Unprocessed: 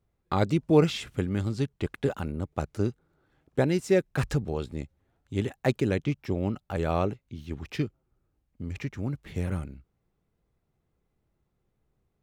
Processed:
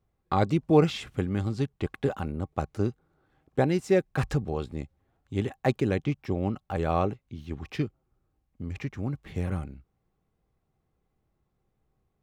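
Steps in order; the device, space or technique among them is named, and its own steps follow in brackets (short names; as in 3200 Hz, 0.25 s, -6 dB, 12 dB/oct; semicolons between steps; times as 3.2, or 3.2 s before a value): inside a helmet (high shelf 4800 Hz -5 dB; small resonant body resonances 780/1100 Hz, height 8 dB, ringing for 70 ms)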